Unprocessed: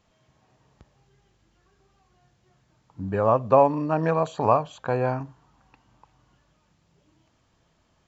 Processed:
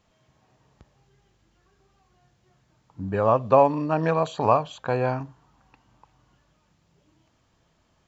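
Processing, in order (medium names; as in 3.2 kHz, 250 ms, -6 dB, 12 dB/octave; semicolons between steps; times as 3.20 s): dynamic bell 3.6 kHz, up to +6 dB, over -46 dBFS, Q 1.1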